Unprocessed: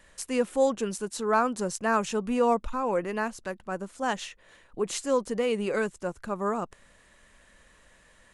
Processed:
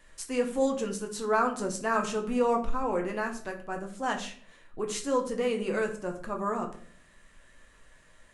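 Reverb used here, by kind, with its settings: simulated room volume 51 m³, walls mixed, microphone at 0.49 m; trim -3.5 dB

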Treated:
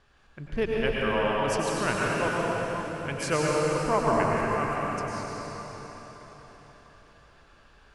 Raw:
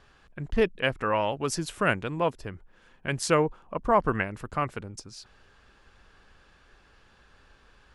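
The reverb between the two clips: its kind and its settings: plate-style reverb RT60 4.6 s, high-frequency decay 0.85×, pre-delay 85 ms, DRR -5 dB; trim -5 dB

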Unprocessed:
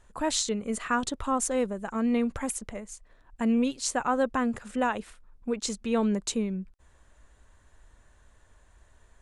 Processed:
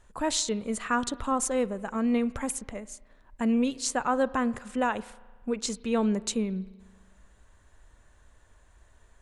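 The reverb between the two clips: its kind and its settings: spring tank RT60 1.4 s, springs 37 ms, chirp 20 ms, DRR 19 dB

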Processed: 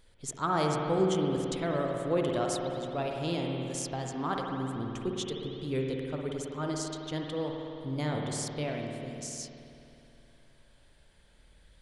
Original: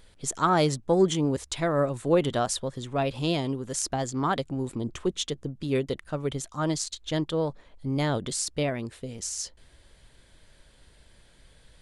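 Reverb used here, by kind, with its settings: spring tank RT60 2.9 s, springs 53 ms, chirp 70 ms, DRR 0.5 dB; trim -7.5 dB

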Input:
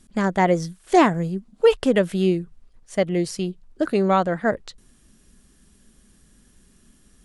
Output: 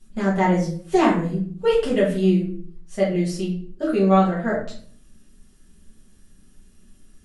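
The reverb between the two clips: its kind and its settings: simulated room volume 49 m³, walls mixed, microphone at 1.6 m; trim -10 dB

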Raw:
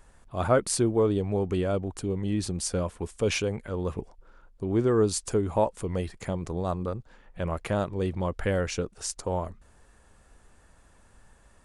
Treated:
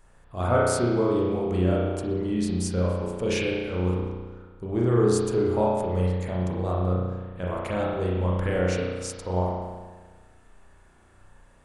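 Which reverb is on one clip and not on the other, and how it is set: spring tank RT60 1.4 s, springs 33 ms, chirp 30 ms, DRR -4.5 dB; trim -3.5 dB

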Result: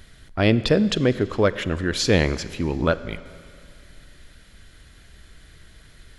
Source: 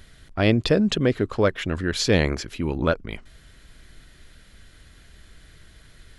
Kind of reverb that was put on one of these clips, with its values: Schroeder reverb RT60 2.3 s, combs from 32 ms, DRR 15 dB; trim +1 dB

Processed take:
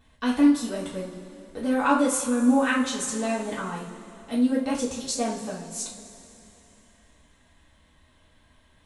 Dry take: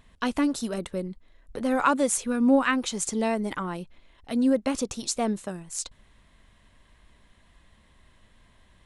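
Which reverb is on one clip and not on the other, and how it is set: two-slope reverb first 0.38 s, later 3.2 s, from -18 dB, DRR -7 dB; trim -7.5 dB

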